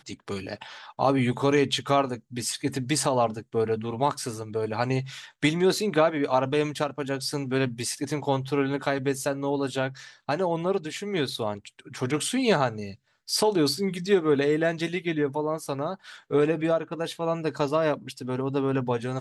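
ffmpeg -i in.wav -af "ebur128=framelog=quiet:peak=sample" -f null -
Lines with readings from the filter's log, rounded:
Integrated loudness:
  I:         -26.5 LUFS
  Threshold: -36.8 LUFS
Loudness range:
  LRA:         2.8 LU
  Threshold: -46.7 LUFS
  LRA low:   -28.0 LUFS
  LRA high:  -25.3 LUFS
Sample peak:
  Peak:       -7.9 dBFS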